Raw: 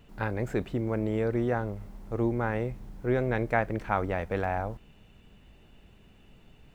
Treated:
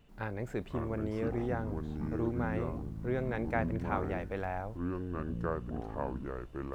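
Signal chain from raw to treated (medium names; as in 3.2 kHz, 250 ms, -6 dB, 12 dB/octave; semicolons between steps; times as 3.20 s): ever faster or slower copies 451 ms, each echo -6 st, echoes 2; trim -7 dB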